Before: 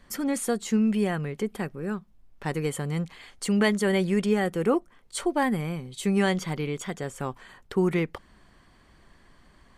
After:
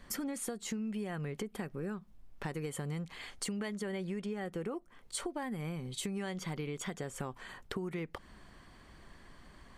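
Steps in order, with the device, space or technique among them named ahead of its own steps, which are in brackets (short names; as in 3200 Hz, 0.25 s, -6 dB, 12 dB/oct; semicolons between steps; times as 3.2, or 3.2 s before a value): 3.74–4.71 high shelf 6100 Hz -6 dB; serial compression, peaks first (compressor, threshold -32 dBFS, peak gain reduction 13.5 dB; compressor 2:1, threshold -39 dBFS, peak gain reduction 6 dB); gain +1 dB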